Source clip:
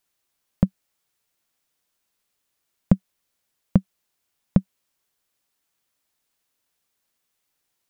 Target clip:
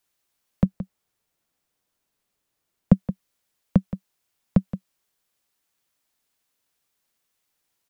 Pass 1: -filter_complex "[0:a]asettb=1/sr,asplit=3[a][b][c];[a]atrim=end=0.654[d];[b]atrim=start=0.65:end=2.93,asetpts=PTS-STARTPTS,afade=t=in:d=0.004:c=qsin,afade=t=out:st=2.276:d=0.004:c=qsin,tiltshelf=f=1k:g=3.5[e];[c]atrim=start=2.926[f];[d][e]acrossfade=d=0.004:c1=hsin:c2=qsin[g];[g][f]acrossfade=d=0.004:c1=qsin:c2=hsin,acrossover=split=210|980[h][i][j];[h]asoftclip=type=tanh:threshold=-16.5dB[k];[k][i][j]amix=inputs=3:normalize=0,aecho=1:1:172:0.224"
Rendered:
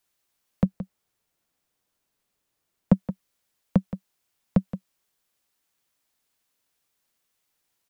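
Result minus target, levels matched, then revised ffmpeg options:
soft clip: distortion +9 dB
-filter_complex "[0:a]asettb=1/sr,asplit=3[a][b][c];[a]atrim=end=0.654[d];[b]atrim=start=0.65:end=2.93,asetpts=PTS-STARTPTS,afade=t=in:d=0.004:c=qsin,afade=t=out:st=2.276:d=0.004:c=qsin,tiltshelf=f=1k:g=3.5[e];[c]atrim=start=2.926[f];[d][e]acrossfade=d=0.004:c1=hsin:c2=qsin[g];[g][f]acrossfade=d=0.004:c1=qsin:c2=hsin,acrossover=split=210|980[h][i][j];[h]asoftclip=type=tanh:threshold=-7dB[k];[k][i][j]amix=inputs=3:normalize=0,aecho=1:1:172:0.224"

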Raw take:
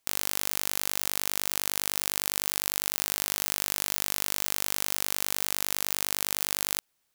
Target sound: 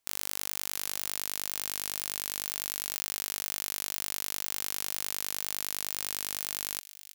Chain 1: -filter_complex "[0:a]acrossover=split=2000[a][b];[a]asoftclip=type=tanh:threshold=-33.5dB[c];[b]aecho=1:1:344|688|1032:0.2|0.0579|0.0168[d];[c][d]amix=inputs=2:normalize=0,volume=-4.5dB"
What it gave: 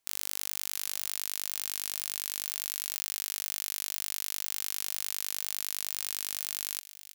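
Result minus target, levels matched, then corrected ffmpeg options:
soft clip: distortion +9 dB
-filter_complex "[0:a]acrossover=split=2000[a][b];[a]asoftclip=type=tanh:threshold=-24.5dB[c];[b]aecho=1:1:344|688|1032:0.2|0.0579|0.0168[d];[c][d]amix=inputs=2:normalize=0,volume=-4.5dB"

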